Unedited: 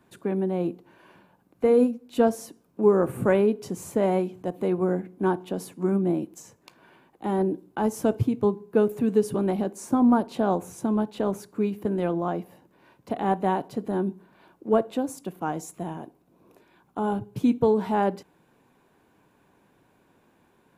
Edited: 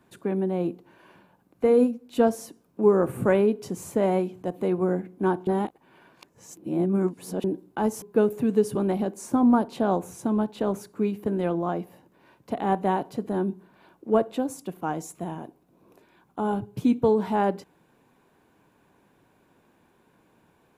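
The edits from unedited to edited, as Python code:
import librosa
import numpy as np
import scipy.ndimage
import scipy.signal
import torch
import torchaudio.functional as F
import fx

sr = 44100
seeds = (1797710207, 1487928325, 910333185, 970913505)

y = fx.edit(x, sr, fx.reverse_span(start_s=5.47, length_s=1.97),
    fx.cut(start_s=8.02, length_s=0.59), tone=tone)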